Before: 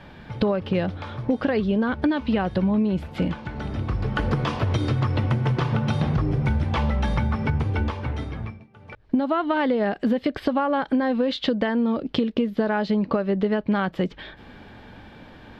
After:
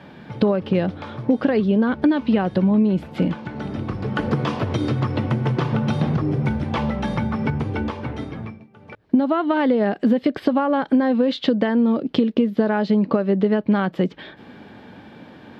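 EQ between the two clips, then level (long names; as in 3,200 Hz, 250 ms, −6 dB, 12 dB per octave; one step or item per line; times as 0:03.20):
high-pass filter 180 Hz 12 dB per octave
low-shelf EQ 420 Hz +8 dB
0.0 dB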